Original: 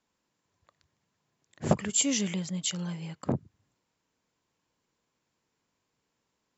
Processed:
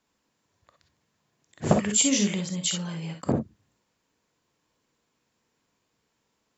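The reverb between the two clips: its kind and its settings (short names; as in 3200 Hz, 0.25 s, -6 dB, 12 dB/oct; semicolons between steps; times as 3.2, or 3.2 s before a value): non-linear reverb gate 80 ms rising, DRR 4.5 dB; gain +3.5 dB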